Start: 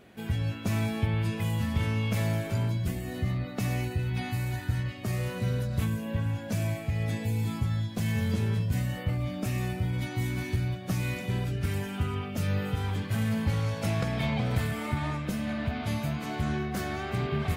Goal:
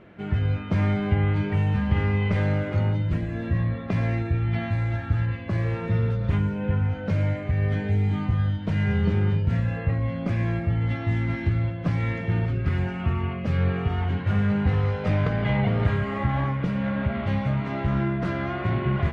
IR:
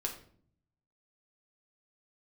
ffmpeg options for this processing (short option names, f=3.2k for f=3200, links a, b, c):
-filter_complex "[0:a]lowpass=2.8k,asplit=2[a][b];[1:a]atrim=start_sample=2205,lowpass=5.1k[c];[b][c]afir=irnorm=-1:irlink=0,volume=-9.5dB[d];[a][d]amix=inputs=2:normalize=0,asetrate=40517,aresample=44100,volume=3dB"